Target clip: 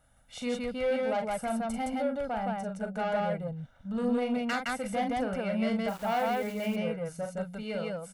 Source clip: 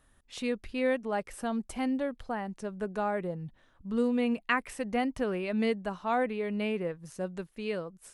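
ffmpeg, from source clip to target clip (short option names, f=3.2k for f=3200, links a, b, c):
-filter_complex "[0:a]highshelf=f=2.2k:g=-9.5,aecho=1:1:1.4:0.92,asoftclip=type=tanh:threshold=-25.5dB,lowshelf=f=78:g=-9,aecho=1:1:40.82|166.2:0.501|0.891,asettb=1/sr,asplit=3[a][b][c];[a]atrim=end=5.884[d];[b]atrim=start=5.88:end=6.76,asetpts=PTS-STARTPTS,afade=t=in:d=0.004:c=qsin,afade=t=out:st=0.876:d=0.004:c=qsin,aeval=exprs='val(0)*gte(abs(val(0)),0.00562)':c=same[e];[c]atrim=start=6.756[f];[d][e]acrossfade=d=0.004:c1=hsin:c2=qsin[g];[g][f]acrossfade=d=0.004:c1=qsin:c2=hsin,crystalizer=i=1:c=0"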